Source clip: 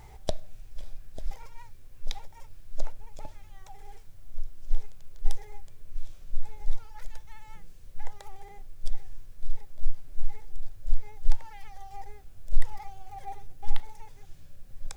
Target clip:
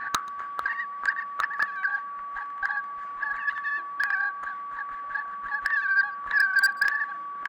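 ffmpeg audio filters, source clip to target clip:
ffmpeg -i in.wav -filter_complex "[0:a]highpass=350,adynamicequalizer=threshold=0.001:dfrequency=510:dqfactor=1:tfrequency=510:tqfactor=1:attack=5:release=100:ratio=0.375:range=2:mode=cutabove:tftype=bell,lowpass=frequency=840:width_type=q:width=4.4,asplit=2[link_01][link_02];[link_02]aeval=exprs='(mod(20*val(0)+1,2)-1)/20':channel_layout=same,volume=-7.5dB[link_03];[link_01][link_03]amix=inputs=2:normalize=0,aeval=exprs='val(0)+0.00562*sin(2*PI*570*n/s)':channel_layout=same,aeval=exprs='0.355*sin(PI/2*4.47*val(0)/0.355)':channel_layout=same,asplit=2[link_04][link_05];[link_05]adelay=268.2,volume=-24dB,highshelf=frequency=4000:gain=-6.04[link_06];[link_04][link_06]amix=inputs=2:normalize=0,asetrate=88200,aresample=44100,volume=-5.5dB" out.wav

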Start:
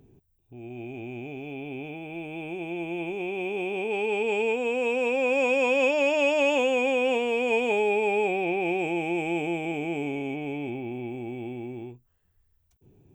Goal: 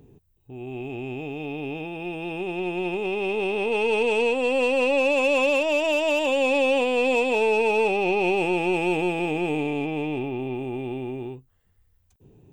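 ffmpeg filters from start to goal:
ffmpeg -i in.wav -af "aeval=exprs='0.237*(cos(1*acos(clip(val(0)/0.237,-1,1)))-cos(1*PI/2))+0.0106*(cos(6*acos(clip(val(0)/0.237,-1,1)))-cos(6*PI/2))+0.0133*(cos(8*acos(clip(val(0)/0.237,-1,1)))-cos(8*PI/2))':channel_layout=same,asetrate=46305,aresample=44100,alimiter=limit=-17.5dB:level=0:latency=1:release=282,volume=4.5dB" out.wav

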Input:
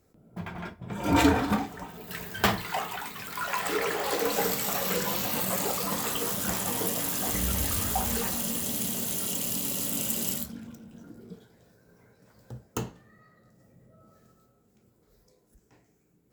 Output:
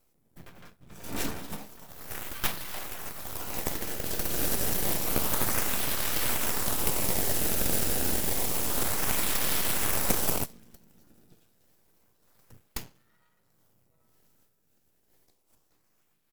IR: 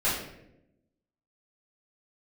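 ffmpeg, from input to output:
-filter_complex "[0:a]crystalizer=i=5.5:c=0,aeval=exprs='max(val(0),0)':channel_layout=same,asplit=2[link_01][link_02];[link_02]asetrate=33038,aresample=44100,atempo=1.33484,volume=-2dB[link_03];[link_01][link_03]amix=inputs=2:normalize=0,asplit=2[link_04][link_05];[link_05]acrusher=samples=23:mix=1:aa=0.000001:lfo=1:lforange=36.8:lforate=0.29,volume=-4.5dB[link_06];[link_04][link_06]amix=inputs=2:normalize=0,volume=-16dB"

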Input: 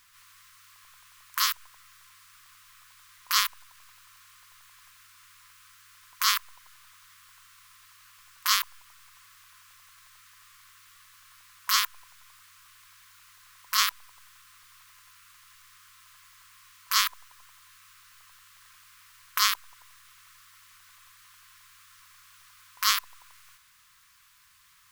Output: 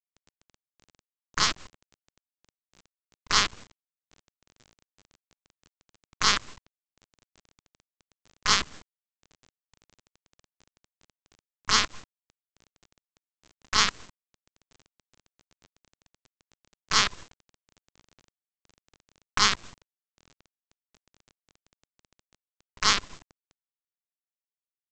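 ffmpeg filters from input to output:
ffmpeg -i in.wav -af "aresample=16000,acrusher=bits=5:dc=4:mix=0:aa=0.000001,aresample=44100,lowshelf=frequency=420:gain=11,volume=1.5dB" out.wav

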